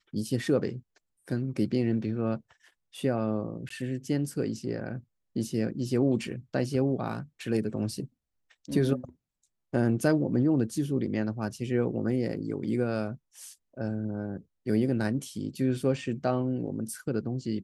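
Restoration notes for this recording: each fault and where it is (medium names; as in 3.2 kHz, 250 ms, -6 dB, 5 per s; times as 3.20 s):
3.69–3.70 s: dropout 14 ms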